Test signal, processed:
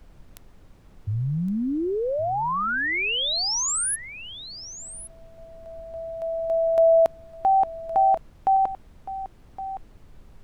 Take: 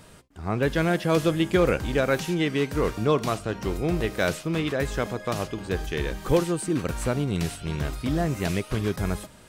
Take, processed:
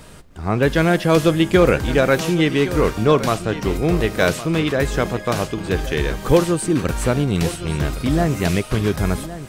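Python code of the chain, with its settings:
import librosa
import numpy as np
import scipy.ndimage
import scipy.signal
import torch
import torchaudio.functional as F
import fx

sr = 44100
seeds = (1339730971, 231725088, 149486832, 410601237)

p1 = fx.dmg_noise_colour(x, sr, seeds[0], colour='brown', level_db=-54.0)
p2 = p1 + fx.echo_single(p1, sr, ms=1115, db=-14.0, dry=0)
y = F.gain(torch.from_numpy(p2), 7.0).numpy()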